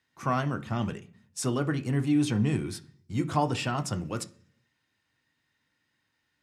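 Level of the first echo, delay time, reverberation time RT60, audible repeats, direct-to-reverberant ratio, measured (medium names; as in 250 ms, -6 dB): no echo, no echo, 0.45 s, no echo, 7.0 dB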